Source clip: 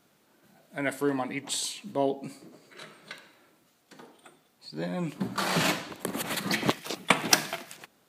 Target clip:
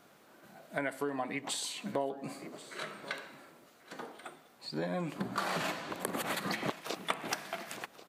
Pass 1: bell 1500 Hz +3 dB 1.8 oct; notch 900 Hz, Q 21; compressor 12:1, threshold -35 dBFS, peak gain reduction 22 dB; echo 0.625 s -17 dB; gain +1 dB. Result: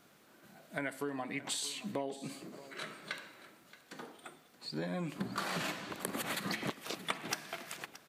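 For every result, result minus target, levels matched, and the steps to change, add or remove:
echo 0.462 s early; 1000 Hz band -2.5 dB
change: echo 1.087 s -17 dB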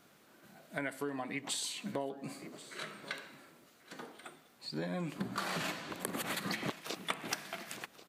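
1000 Hz band -2.5 dB
add after compressor: bell 730 Hz +5.5 dB 2 oct

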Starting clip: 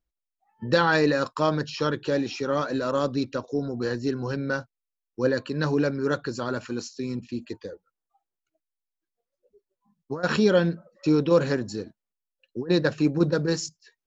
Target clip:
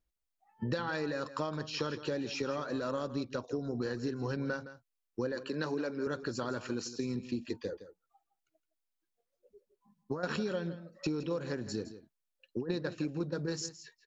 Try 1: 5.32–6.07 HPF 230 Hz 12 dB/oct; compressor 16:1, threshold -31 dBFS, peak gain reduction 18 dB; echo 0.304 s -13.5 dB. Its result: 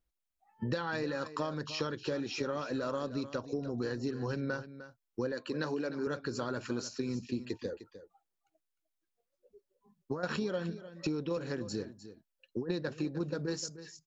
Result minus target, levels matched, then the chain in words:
echo 0.14 s late
5.32–6.07 HPF 230 Hz 12 dB/oct; compressor 16:1, threshold -31 dBFS, peak gain reduction 18 dB; echo 0.164 s -13.5 dB

